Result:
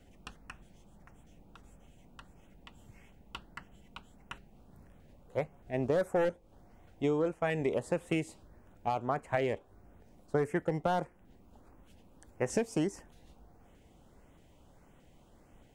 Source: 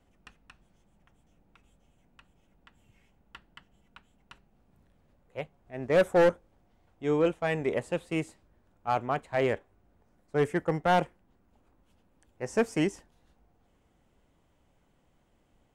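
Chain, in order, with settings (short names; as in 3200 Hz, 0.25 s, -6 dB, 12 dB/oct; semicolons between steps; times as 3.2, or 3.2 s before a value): compressor 10:1, threshold -35 dBFS, peak gain reduction 16 dB; LFO notch saw up 1.6 Hz 960–5200 Hz; gain +8 dB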